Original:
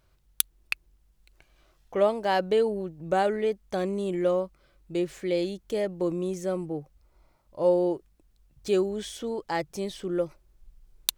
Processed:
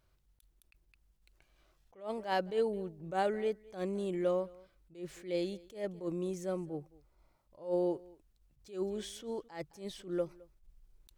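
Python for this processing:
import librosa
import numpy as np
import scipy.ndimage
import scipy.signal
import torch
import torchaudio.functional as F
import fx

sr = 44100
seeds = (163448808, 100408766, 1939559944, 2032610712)

y = x + 10.0 ** (-23.5 / 20.0) * np.pad(x, (int(214 * sr / 1000.0), 0))[:len(x)]
y = fx.attack_slew(y, sr, db_per_s=170.0)
y = y * librosa.db_to_amplitude(-6.5)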